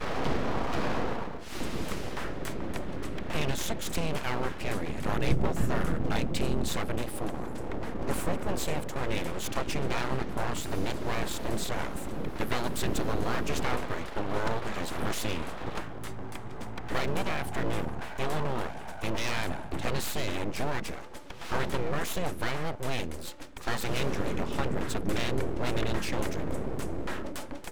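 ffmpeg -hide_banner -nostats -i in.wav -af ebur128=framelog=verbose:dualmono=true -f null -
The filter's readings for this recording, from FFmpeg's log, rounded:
Integrated loudness:
  I:         -30.3 LUFS
  Threshold: -40.4 LUFS
Loudness range:
  LRA:         3.0 LU
  Threshold: -50.3 LUFS
  LRA low:   -31.7 LUFS
  LRA high:  -28.7 LUFS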